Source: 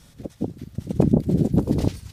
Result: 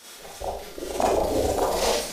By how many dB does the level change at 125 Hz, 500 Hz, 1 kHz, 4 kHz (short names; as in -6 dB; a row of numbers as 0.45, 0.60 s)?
-16.0 dB, +5.0 dB, +14.5 dB, n/a